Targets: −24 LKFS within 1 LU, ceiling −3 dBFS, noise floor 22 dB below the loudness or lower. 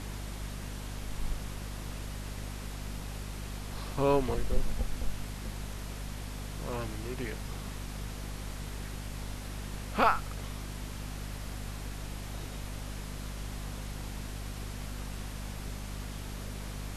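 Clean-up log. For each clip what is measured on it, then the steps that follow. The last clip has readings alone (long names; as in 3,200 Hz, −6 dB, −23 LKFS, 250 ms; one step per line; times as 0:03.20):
mains hum 50 Hz; hum harmonics up to 250 Hz; level of the hum −37 dBFS; background noise floor −41 dBFS; target noise floor −60 dBFS; integrated loudness −37.5 LKFS; sample peak −11.0 dBFS; target loudness −24.0 LKFS
→ mains-hum notches 50/100/150/200/250 Hz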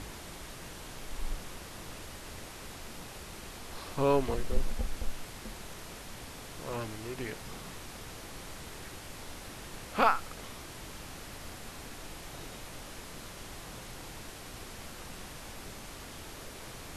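mains hum none found; background noise floor −46 dBFS; target noise floor −61 dBFS
→ noise reduction from a noise print 15 dB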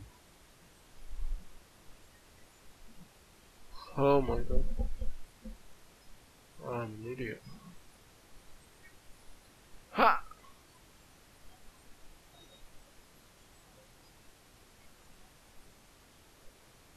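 background noise floor −61 dBFS; integrated loudness −34.0 LKFS; sample peak −11.5 dBFS; target loudness −24.0 LKFS
→ level +10 dB
brickwall limiter −3 dBFS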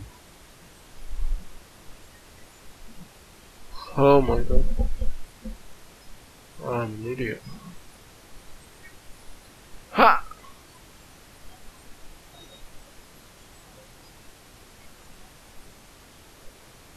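integrated loudness −24.0 LKFS; sample peak −3.0 dBFS; background noise floor −51 dBFS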